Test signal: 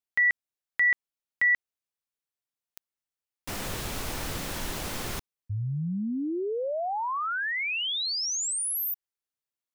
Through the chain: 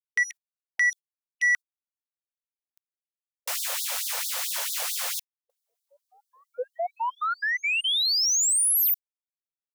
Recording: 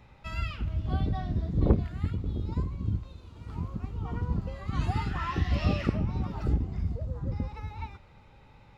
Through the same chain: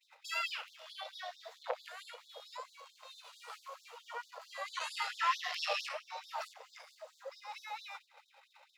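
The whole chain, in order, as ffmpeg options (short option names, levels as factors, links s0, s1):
-filter_complex "[0:a]agate=range=0.0224:threshold=0.00355:ratio=3:release=73:detection=peak,highshelf=f=4300:g=7,asplit=2[s0][s1];[s1]acompressor=threshold=0.0141:ratio=5:attack=10:release=336:knee=6:detection=peak,volume=0.794[s2];[s0][s2]amix=inputs=2:normalize=0,asoftclip=type=tanh:threshold=0.106,afftfilt=real='re*gte(b*sr/1024,440*pow(3500/440,0.5+0.5*sin(2*PI*4.5*pts/sr)))':imag='im*gte(b*sr/1024,440*pow(3500/440,0.5+0.5*sin(2*PI*4.5*pts/sr)))':win_size=1024:overlap=0.75,volume=1.26"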